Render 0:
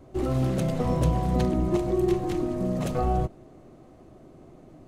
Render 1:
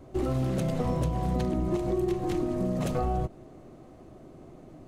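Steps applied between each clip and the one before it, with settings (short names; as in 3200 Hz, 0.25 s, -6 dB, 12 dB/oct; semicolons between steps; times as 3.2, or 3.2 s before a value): compressor, threshold -25 dBFS, peak gain reduction 8 dB; gain +1 dB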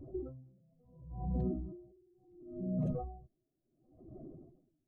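spectral contrast raised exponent 2.1; limiter -26.5 dBFS, peak gain reduction 7 dB; dB-linear tremolo 0.71 Hz, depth 37 dB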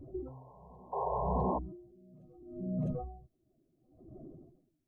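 painted sound noise, 0.92–1.59, 390–1100 Hz -34 dBFS; reverse echo 0.653 s -24 dB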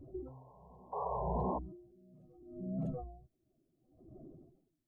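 record warp 33 1/3 rpm, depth 100 cents; gain -3.5 dB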